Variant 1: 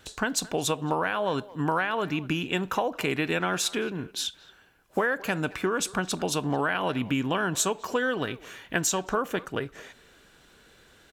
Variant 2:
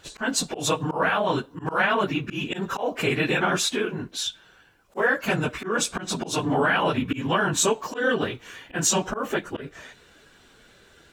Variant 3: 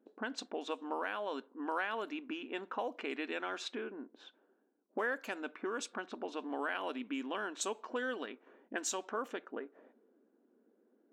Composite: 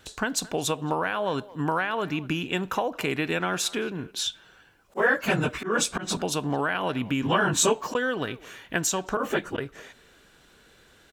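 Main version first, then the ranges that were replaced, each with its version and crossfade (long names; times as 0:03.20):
1
0:04.19–0:06.17: punch in from 2
0:07.23–0:07.95: punch in from 2
0:09.17–0:09.58: punch in from 2
not used: 3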